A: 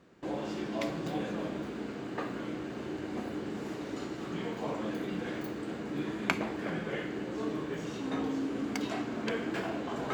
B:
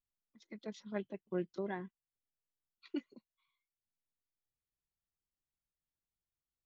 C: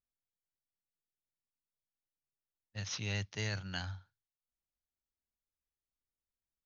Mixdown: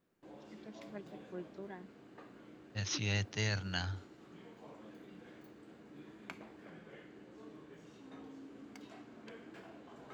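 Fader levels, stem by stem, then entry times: -18.5 dB, -8.5 dB, +2.5 dB; 0.00 s, 0.00 s, 0.00 s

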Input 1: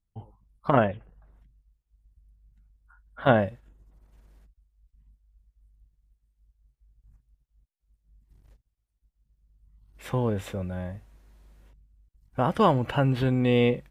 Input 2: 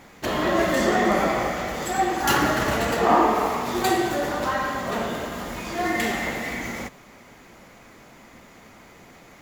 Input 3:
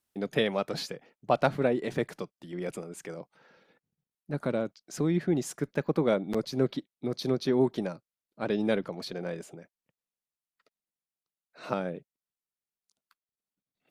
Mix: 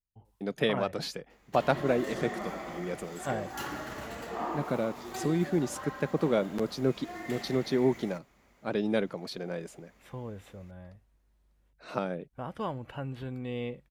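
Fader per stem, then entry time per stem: -14.0 dB, -17.0 dB, -1.0 dB; 0.00 s, 1.30 s, 0.25 s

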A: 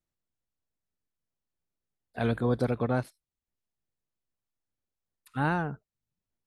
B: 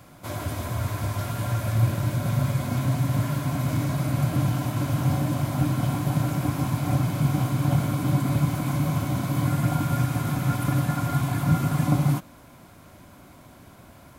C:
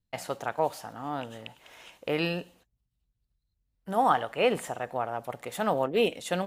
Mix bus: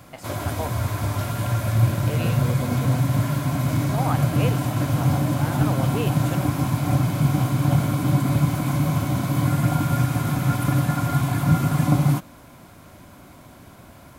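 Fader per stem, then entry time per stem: -6.0 dB, +3.0 dB, -5.0 dB; 0.00 s, 0.00 s, 0.00 s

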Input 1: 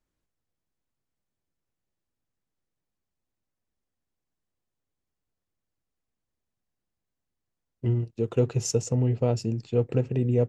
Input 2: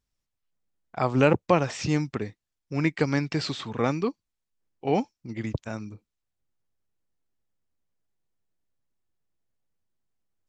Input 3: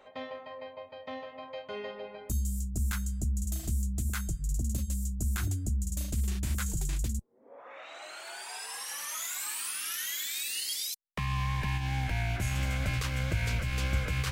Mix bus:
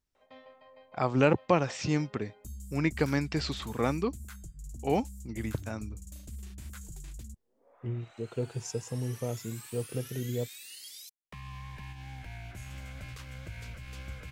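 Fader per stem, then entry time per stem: -10.0 dB, -3.5 dB, -12.5 dB; 0.00 s, 0.00 s, 0.15 s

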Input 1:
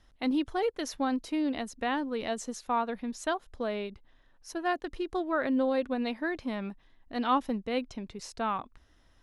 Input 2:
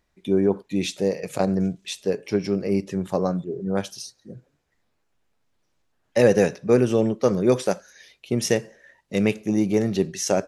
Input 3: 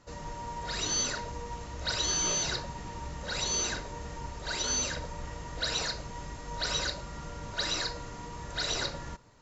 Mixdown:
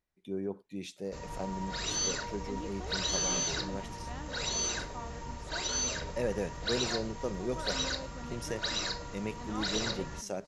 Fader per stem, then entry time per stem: -16.5 dB, -16.0 dB, -2.0 dB; 2.25 s, 0.00 s, 1.05 s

